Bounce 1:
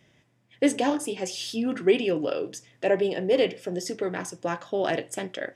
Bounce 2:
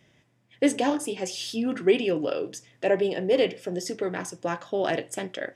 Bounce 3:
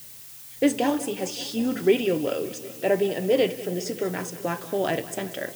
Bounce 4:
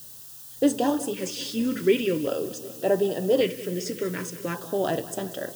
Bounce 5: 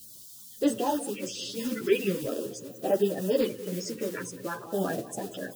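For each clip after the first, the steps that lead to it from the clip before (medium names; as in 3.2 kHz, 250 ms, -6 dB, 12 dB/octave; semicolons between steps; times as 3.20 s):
no audible change
bass shelf 130 Hz +8 dB; added noise blue -44 dBFS; modulated delay 190 ms, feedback 75%, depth 77 cents, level -17 dB
LFO notch square 0.44 Hz 750–2200 Hz
coarse spectral quantiser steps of 30 dB; three-phase chorus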